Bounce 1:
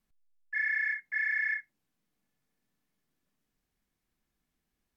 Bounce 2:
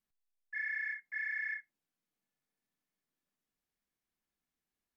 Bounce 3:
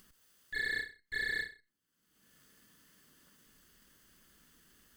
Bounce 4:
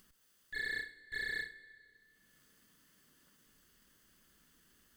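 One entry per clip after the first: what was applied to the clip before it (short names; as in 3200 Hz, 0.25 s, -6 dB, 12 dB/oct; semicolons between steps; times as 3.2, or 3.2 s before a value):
low shelf 210 Hz -9 dB; gain -7 dB
minimum comb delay 0.64 ms; upward compressor, threshold -48 dBFS; ending taper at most 170 dB/s; gain +3.5 dB
reverb RT60 2.9 s, pre-delay 44 ms, DRR 17 dB; gain -3.5 dB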